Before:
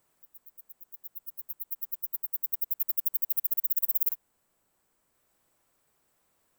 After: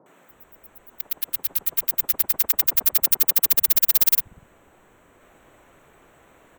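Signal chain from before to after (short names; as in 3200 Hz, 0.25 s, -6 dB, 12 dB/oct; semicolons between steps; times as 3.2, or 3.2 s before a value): Wiener smoothing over 9 samples; sample leveller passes 1; three bands offset in time mids, highs, lows 60/300 ms, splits 150/970 Hz; spectral compressor 2:1; gain +8 dB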